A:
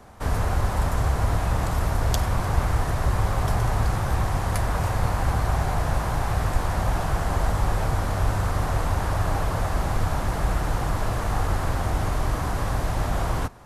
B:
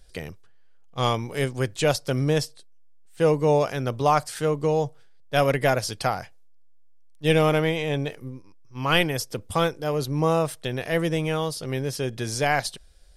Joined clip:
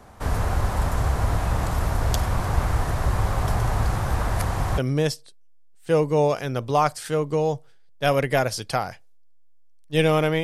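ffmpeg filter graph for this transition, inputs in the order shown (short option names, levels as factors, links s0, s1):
-filter_complex "[0:a]apad=whole_dur=10.43,atrim=end=10.43,asplit=2[s0][s1];[s0]atrim=end=4.192[s2];[s1]atrim=start=4.188:end=4.782,asetpts=PTS-STARTPTS,areverse[s3];[1:a]atrim=start=2.088:end=7.74[s4];[s2][s3]acrossfade=d=0.004:c1=hsin:c2=hsin[s5];[s5][s4]acrossfade=d=0.004:c1=hsin:c2=hsin"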